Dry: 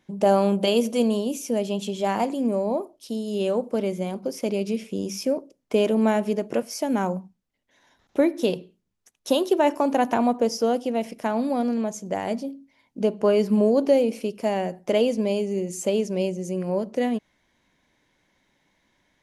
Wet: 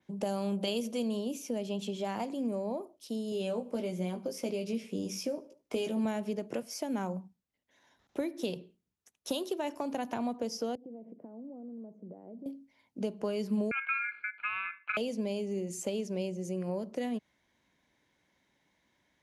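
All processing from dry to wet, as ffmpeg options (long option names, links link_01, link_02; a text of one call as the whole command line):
ffmpeg -i in.wav -filter_complex "[0:a]asettb=1/sr,asplit=3[link_01][link_02][link_03];[link_01]atrim=end=3.304[link_04];[link_02]atrim=start=3.3:end=6.05,asetpts=PTS-STARTPTS,afade=type=in:duration=0.004:curve=qsin,afade=type=out:start_time=2.746:duration=0.004:curve=qsin,asplit=2[link_05][link_06];[link_06]adelay=17,volume=-5dB[link_07];[link_05][link_07]amix=inputs=2:normalize=0,atrim=end_sample=121275,aecho=1:1:74|148|222:0.0708|0.0304|0.0131,atrim=end_sample=121275[link_08];[link_03]atrim=start=6.046[link_09];[link_04][link_08]acrossfade=duration=0.004:curve1=hsin:curve2=qsin[link_10];[link_10][link_09]acrossfade=duration=0.004:curve1=qsin:curve2=hsin,asettb=1/sr,asplit=3[link_11][link_12][link_13];[link_11]atrim=end=10.754[link_14];[link_12]atrim=start=10.75:end=12.46,asetpts=PTS-STARTPTS,afade=type=in:duration=0.004:curve=qsin,afade=type=out:start_time=1.706:duration=0.004:curve=qsin,acompressor=threshold=-35dB:ratio=8:attack=3.2:release=140:knee=1:detection=peak,asuperpass=centerf=290:order=4:qfactor=0.77[link_15];[link_13]atrim=start=12.456[link_16];[link_14][link_15]acrossfade=duration=0.004:curve1=hsin:curve2=qsin[link_17];[link_17][link_16]acrossfade=duration=0.004:curve1=qsin:curve2=hsin,asettb=1/sr,asplit=3[link_18][link_19][link_20];[link_18]atrim=end=13.714[link_21];[link_19]atrim=start=13.71:end=14.97,asetpts=PTS-STARTPTS,afade=type=in:duration=0.004:curve=qsin,afade=type=out:start_time=1.256:duration=0.004:curve=qsin,lowpass=frequency=1300:width=0.5412,lowpass=frequency=1300:width=1.3066,aeval=exprs='val(0)*sin(2*PI*1900*n/s)':channel_layout=same[link_22];[link_20]atrim=start=14.966[link_23];[link_21][link_22]acrossfade=duration=0.004:curve1=hsin:curve2=qsin[link_24];[link_24][link_23]acrossfade=duration=0.004:curve1=qsin:curve2=hsin,highpass=47,adynamicequalizer=threshold=0.00282:dfrequency=9200:dqfactor=0.84:tfrequency=9200:tqfactor=0.84:attack=5:release=100:ratio=0.375:range=3.5:mode=cutabove:tftype=bell,acrossover=split=170|3000[link_25][link_26][link_27];[link_26]acompressor=threshold=-26dB:ratio=6[link_28];[link_25][link_28][link_27]amix=inputs=3:normalize=0,volume=-6dB" out.wav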